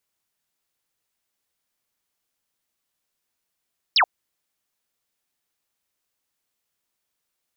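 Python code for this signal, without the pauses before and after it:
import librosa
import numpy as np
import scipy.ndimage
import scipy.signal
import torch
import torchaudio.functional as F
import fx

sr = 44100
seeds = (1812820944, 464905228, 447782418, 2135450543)

y = fx.laser_zap(sr, level_db=-13.5, start_hz=5600.0, end_hz=640.0, length_s=0.08, wave='sine')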